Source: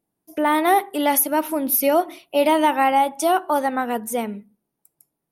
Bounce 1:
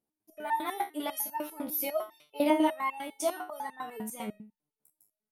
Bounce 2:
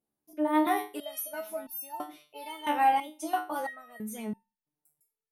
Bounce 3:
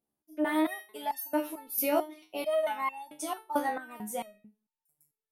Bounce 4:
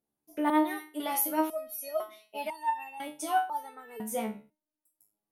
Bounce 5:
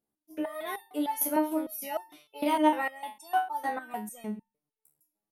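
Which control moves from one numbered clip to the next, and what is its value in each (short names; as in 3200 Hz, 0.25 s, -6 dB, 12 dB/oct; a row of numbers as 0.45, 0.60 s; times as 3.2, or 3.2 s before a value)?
stepped resonator, rate: 10, 3, 4.5, 2, 6.6 Hz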